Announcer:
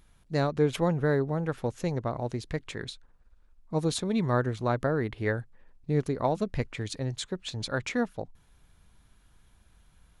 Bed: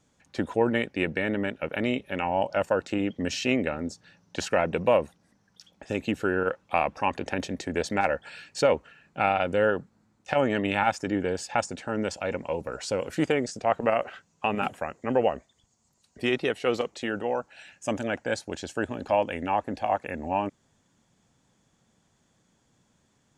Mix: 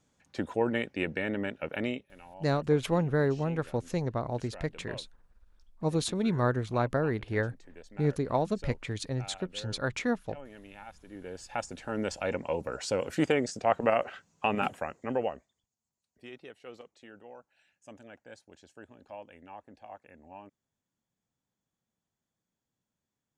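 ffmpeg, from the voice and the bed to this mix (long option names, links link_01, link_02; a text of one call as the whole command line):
ffmpeg -i stem1.wav -i stem2.wav -filter_complex "[0:a]adelay=2100,volume=-1dB[link_01];[1:a]volume=17.5dB,afade=type=out:start_time=1.85:duration=0.25:silence=0.112202,afade=type=in:start_time=11.07:duration=1.21:silence=0.0794328,afade=type=out:start_time=14.67:duration=1.01:silence=0.105925[link_02];[link_01][link_02]amix=inputs=2:normalize=0" out.wav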